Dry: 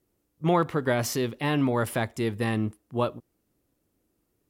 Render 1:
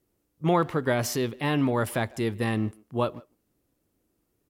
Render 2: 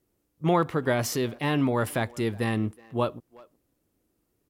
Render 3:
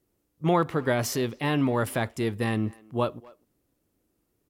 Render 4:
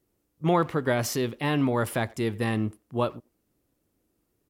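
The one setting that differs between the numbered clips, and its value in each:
far-end echo of a speakerphone, delay time: 150, 370, 250, 90 milliseconds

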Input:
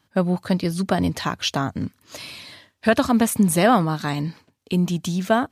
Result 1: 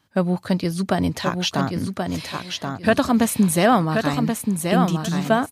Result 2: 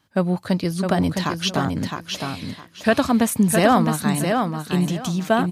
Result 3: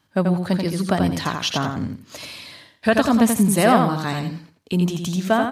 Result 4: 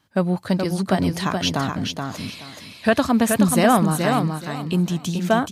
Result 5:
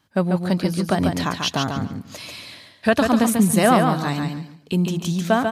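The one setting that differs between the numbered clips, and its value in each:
repeating echo, delay time: 1,079, 662, 85, 426, 142 milliseconds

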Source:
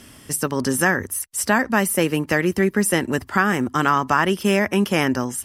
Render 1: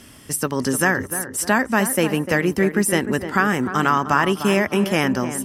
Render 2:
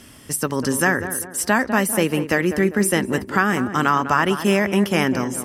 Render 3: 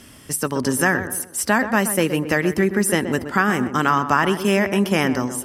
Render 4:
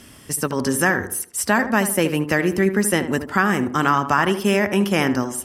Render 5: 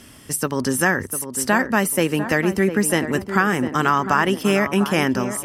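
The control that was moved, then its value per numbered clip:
tape delay, delay time: 302, 198, 125, 76, 702 milliseconds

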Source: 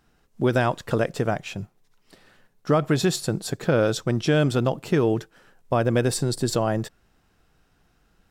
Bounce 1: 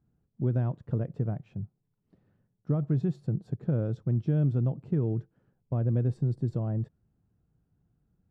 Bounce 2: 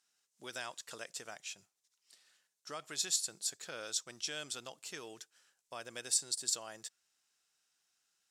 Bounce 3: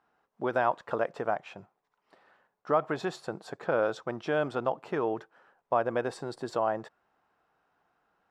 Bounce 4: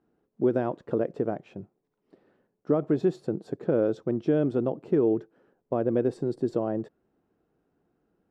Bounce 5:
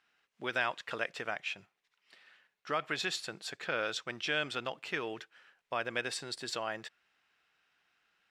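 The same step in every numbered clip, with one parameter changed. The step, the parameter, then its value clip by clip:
resonant band-pass, frequency: 120, 7,200, 920, 350, 2,400 Hertz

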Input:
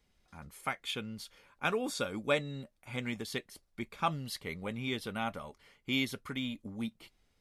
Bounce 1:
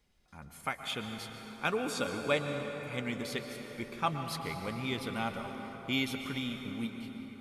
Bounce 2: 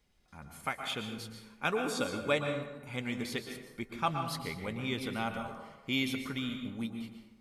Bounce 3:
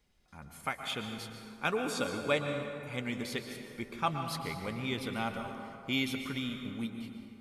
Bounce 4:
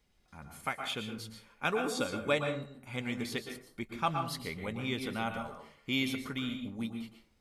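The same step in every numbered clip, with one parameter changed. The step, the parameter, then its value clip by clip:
dense smooth reverb, RT60: 5.1, 1.1, 2.5, 0.52 seconds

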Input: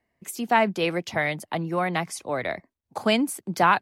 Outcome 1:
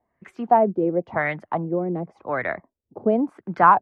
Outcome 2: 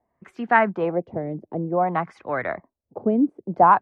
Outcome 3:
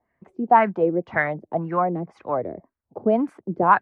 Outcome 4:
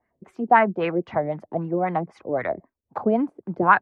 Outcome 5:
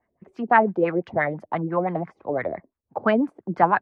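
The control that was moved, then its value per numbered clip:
auto-filter low-pass, speed: 0.93, 0.55, 1.9, 3.8, 5.9 Hertz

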